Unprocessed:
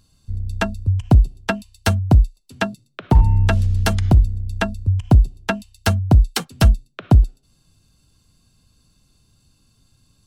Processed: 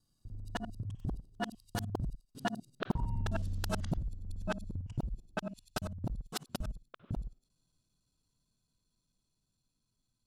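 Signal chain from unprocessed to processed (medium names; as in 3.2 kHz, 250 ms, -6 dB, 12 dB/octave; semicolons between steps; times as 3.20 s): time reversed locally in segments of 53 ms; Doppler pass-by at 3.32 s, 20 m/s, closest 7.3 m; peaking EQ 2.3 kHz -7 dB 0.75 oct; compression 4:1, threshold -35 dBFS, peak gain reduction 20.5 dB; peaking EQ 71 Hz -11.5 dB 0.86 oct; trim +4 dB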